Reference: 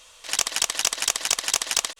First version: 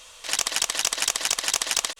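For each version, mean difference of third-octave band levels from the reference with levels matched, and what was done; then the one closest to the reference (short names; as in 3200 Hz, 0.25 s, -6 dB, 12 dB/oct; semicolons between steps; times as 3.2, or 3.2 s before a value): 2.0 dB: limiter -12 dBFS, peak gain reduction 6.5 dB; gain +3.5 dB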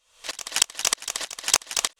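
6.0 dB: dB-ramp tremolo swelling 3.2 Hz, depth 27 dB; gain +6 dB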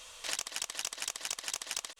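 3.5 dB: compressor 8:1, threshold -33 dBFS, peak gain reduction 17 dB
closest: first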